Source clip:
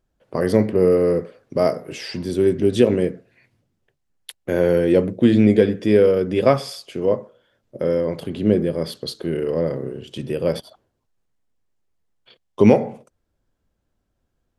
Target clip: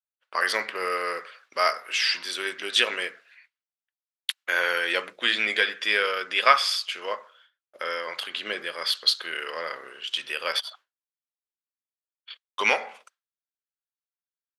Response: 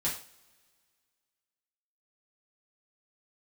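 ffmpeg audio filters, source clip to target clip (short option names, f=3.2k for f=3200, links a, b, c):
-af "agate=range=-33dB:threshold=-48dB:ratio=3:detection=peak,highpass=f=1.3k:t=q:w=2.2,equalizer=f=3.4k:w=0.68:g=10.5"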